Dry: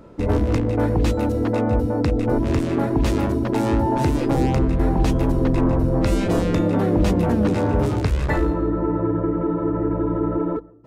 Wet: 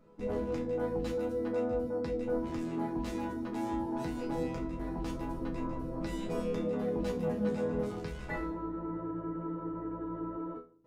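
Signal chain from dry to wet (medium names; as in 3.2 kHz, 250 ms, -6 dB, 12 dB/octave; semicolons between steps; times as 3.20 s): chord resonator E3 major, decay 0.3 s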